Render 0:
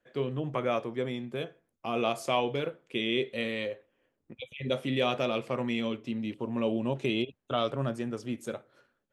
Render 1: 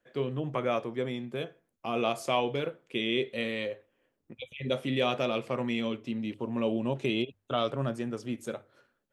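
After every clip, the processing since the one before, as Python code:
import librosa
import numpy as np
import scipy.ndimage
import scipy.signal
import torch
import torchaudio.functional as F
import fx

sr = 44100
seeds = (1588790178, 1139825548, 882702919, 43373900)

y = fx.hum_notches(x, sr, base_hz=50, count=2)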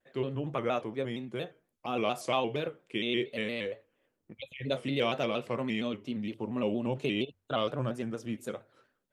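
y = fx.vibrato_shape(x, sr, shape='square', rate_hz=4.3, depth_cents=100.0)
y = F.gain(torch.from_numpy(y), -1.5).numpy()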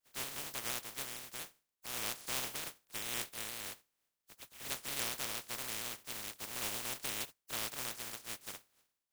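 y = fx.spec_flatten(x, sr, power=0.1)
y = F.gain(torch.from_numpy(y), -8.5).numpy()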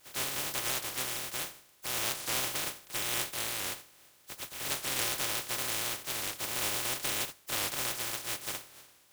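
y = fx.bin_compress(x, sr, power=0.6)
y = fx.notch_comb(y, sr, f0_hz=230.0)
y = fx.record_warp(y, sr, rpm=45.0, depth_cents=100.0)
y = F.gain(torch.from_numpy(y), 5.5).numpy()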